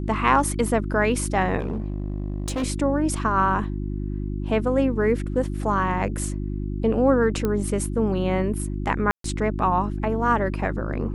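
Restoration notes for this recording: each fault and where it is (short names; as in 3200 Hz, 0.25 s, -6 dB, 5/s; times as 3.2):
hum 50 Hz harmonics 7 -28 dBFS
1.59–2.64 clipped -22.5 dBFS
7.45 pop -12 dBFS
9.11–9.24 gap 0.133 s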